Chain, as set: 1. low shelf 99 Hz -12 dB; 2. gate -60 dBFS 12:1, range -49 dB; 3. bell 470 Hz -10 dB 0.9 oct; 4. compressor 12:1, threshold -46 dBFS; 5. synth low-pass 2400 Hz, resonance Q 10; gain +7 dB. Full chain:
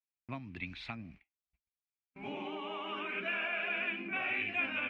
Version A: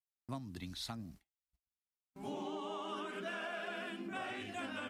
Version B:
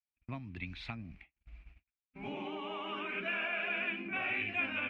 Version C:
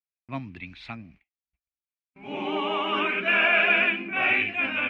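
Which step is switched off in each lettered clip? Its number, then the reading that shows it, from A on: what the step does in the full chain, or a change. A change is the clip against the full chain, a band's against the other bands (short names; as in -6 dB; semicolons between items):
5, crest factor change -3.5 dB; 1, 125 Hz band +3.5 dB; 4, mean gain reduction 9.0 dB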